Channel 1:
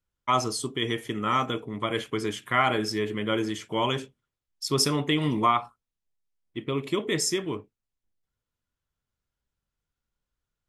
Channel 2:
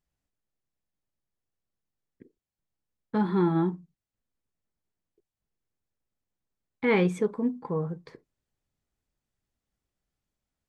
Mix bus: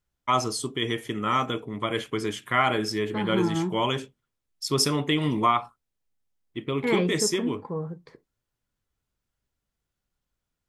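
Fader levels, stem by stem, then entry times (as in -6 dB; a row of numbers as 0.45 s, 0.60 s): +0.5 dB, -2.0 dB; 0.00 s, 0.00 s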